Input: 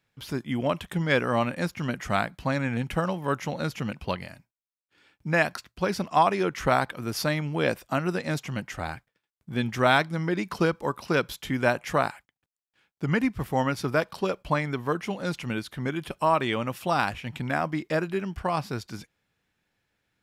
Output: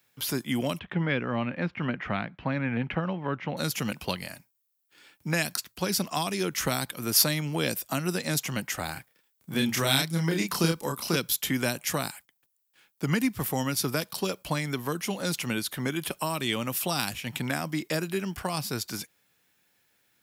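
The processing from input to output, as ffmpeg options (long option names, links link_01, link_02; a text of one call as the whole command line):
ffmpeg -i in.wav -filter_complex "[0:a]asettb=1/sr,asplit=3[link_01][link_02][link_03];[link_01]atrim=end=0.794[link_04];[link_02]atrim=start=0.79:end=3.57,asetpts=PTS-STARTPTS,afade=type=in:duration=0.004:curve=qsin,afade=type=out:start_time=2.776:duration=0.004:curve=qsin,lowpass=frequency=2600:width=0.5412,lowpass=frequency=2600:width=1.3066[link_05];[link_03]atrim=start=3.566[link_06];[link_04][link_05]acrossfade=duration=0.004:curve1=hsin:curve2=qsin[link_07];[link_07][link_06]acrossfade=duration=0.004:curve1=qsin:curve2=hsin,asettb=1/sr,asplit=3[link_08][link_09][link_10];[link_08]atrim=end=8.934[link_11];[link_09]atrim=start=8.93:end=11.16,asetpts=PTS-STARTPTS,afade=type=in:duration=0.004:curve=qsin,afade=type=out:start_time=2.226:duration=0.004:curve=qsin,asplit=2[link_12][link_13];[link_13]adelay=30,volume=-2.5dB[link_14];[link_12][link_14]amix=inputs=2:normalize=0,atrim=end_sample=98343[link_15];[link_10]atrim=start=11.156[link_16];[link_11][link_15]acrossfade=duration=0.004:curve1=hsin:curve2=qsin[link_17];[link_17][link_16]acrossfade=duration=0.004:curve1=qsin:curve2=hsin,highpass=frequency=200:poles=1,aemphasis=mode=production:type=50fm,acrossover=split=280|3000[link_18][link_19][link_20];[link_19]acompressor=threshold=-35dB:ratio=6[link_21];[link_18][link_21][link_20]amix=inputs=3:normalize=0,volume=4dB" out.wav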